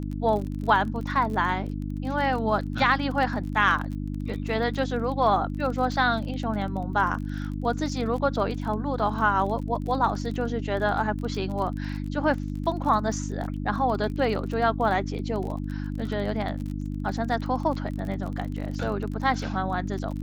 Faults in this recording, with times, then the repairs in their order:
crackle 30/s -33 dBFS
hum 50 Hz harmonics 6 -31 dBFS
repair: de-click; de-hum 50 Hz, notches 6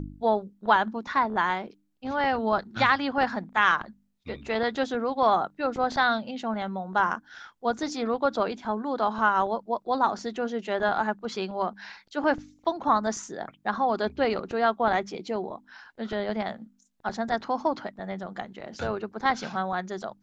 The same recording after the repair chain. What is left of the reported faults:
none

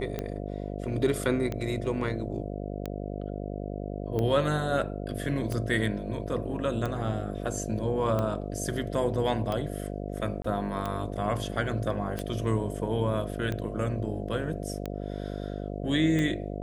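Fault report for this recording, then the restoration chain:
buzz 50 Hz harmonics 14 -35 dBFS
tick 45 rpm -18 dBFS
10.42–10.44 gap 24 ms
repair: de-click; de-hum 50 Hz, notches 14; interpolate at 10.42, 24 ms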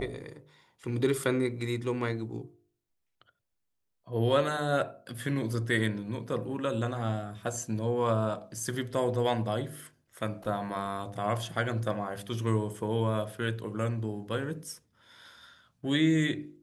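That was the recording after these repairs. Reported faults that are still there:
none

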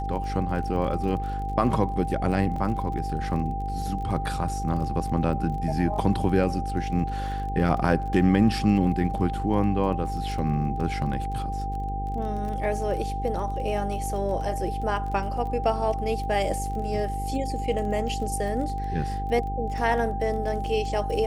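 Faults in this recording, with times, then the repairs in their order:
buzz 50 Hz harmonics 10 -31 dBFS
crackle 25/s -34 dBFS
tone 790 Hz -31 dBFS
2.56 gap 3.3 ms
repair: de-click; de-hum 50 Hz, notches 10; notch 790 Hz, Q 30; interpolate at 2.56, 3.3 ms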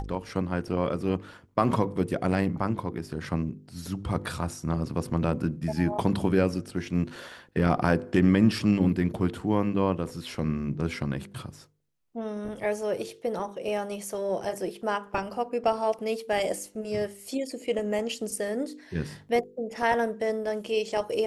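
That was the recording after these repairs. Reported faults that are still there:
none

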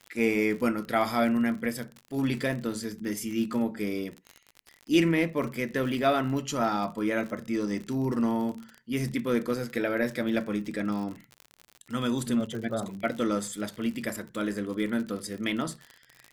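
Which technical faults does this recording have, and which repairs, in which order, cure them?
crackle 49/s -34 dBFS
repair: de-click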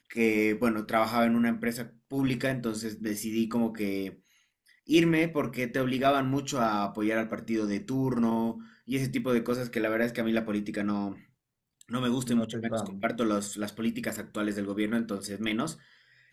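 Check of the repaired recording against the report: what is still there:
none

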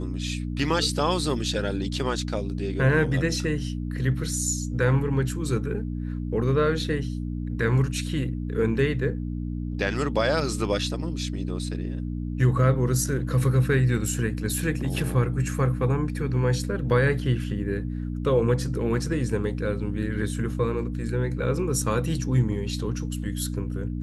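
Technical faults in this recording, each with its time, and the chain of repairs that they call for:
hum 60 Hz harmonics 5 -30 dBFS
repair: de-hum 60 Hz, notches 5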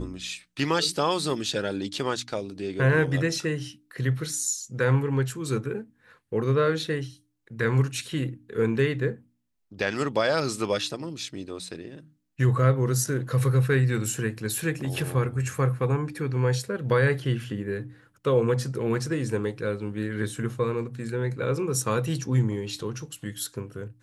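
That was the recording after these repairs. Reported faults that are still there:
none

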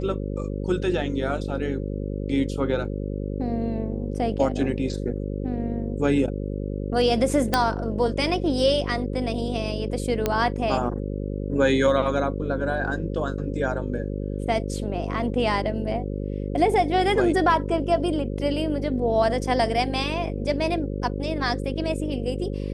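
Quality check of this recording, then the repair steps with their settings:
buzz 50 Hz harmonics 11 -29 dBFS
7.54 pop -5 dBFS
10.26 pop -8 dBFS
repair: de-click; de-hum 50 Hz, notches 11

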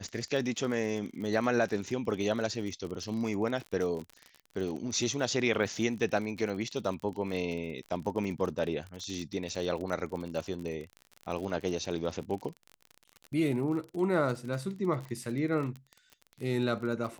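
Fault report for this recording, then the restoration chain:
crackle 40/s -36 dBFS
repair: de-click

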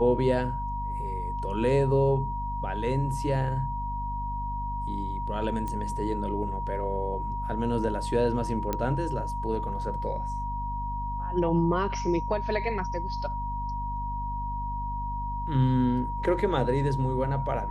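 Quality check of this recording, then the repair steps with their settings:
hum 50 Hz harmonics 5 -34 dBFS
tone 950 Hz -32 dBFS
5.68 pop -21 dBFS
8.73 pop -14 dBFS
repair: de-click; de-hum 50 Hz, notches 5; notch 950 Hz, Q 30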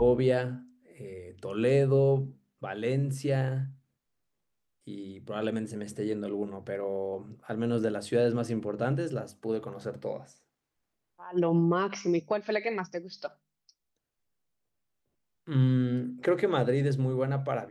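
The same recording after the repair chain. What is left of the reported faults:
8.73 pop

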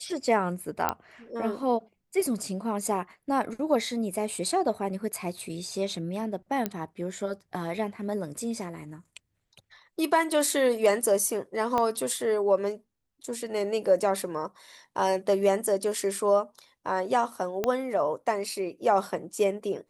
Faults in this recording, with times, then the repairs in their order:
0.89 pop -10 dBFS
6.66 pop -13 dBFS
11.78 pop -14 dBFS
17.64 pop -13 dBFS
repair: de-click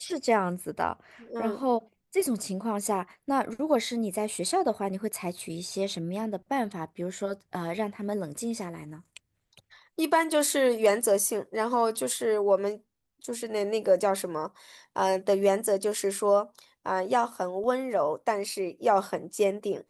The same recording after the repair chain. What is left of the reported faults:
11.78 pop
17.64 pop

